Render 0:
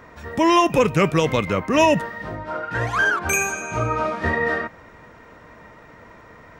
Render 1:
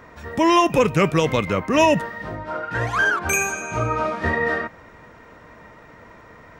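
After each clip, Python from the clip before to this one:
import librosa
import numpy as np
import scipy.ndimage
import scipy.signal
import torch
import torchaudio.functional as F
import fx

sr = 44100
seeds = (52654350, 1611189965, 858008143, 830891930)

y = x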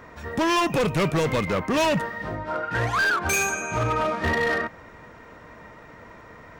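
y = np.clip(x, -10.0 ** (-19.0 / 20.0), 10.0 ** (-19.0 / 20.0))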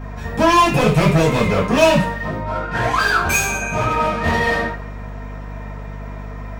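y = fx.rev_double_slope(x, sr, seeds[0], early_s=0.38, late_s=1.6, knee_db=-27, drr_db=-8.5)
y = fx.add_hum(y, sr, base_hz=50, snr_db=12)
y = y * 10.0 ** (-1.5 / 20.0)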